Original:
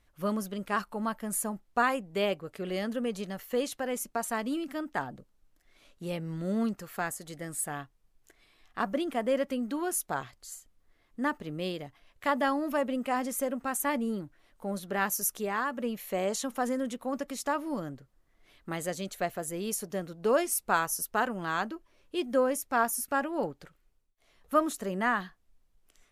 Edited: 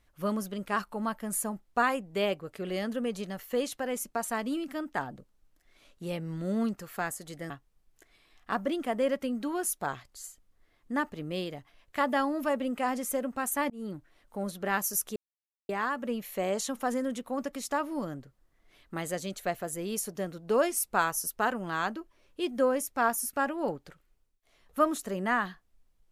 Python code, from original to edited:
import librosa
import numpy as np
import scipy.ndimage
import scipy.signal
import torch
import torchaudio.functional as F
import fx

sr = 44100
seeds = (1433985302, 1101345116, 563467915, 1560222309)

y = fx.edit(x, sr, fx.cut(start_s=7.5, length_s=0.28),
    fx.fade_in_span(start_s=13.98, length_s=0.25),
    fx.insert_silence(at_s=15.44, length_s=0.53), tone=tone)